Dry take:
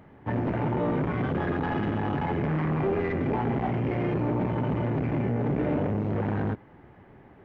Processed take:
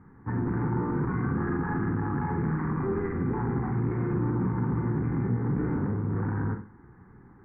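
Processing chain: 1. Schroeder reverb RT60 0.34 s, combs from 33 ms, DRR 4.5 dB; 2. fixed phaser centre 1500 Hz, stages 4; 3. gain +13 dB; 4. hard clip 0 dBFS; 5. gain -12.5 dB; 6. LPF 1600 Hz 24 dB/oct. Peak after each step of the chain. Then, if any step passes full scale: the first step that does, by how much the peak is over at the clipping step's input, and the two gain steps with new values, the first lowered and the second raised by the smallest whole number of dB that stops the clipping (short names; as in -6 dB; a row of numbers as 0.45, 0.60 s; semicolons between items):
-15.0, -17.0, -4.0, -4.0, -16.5, -16.5 dBFS; no overload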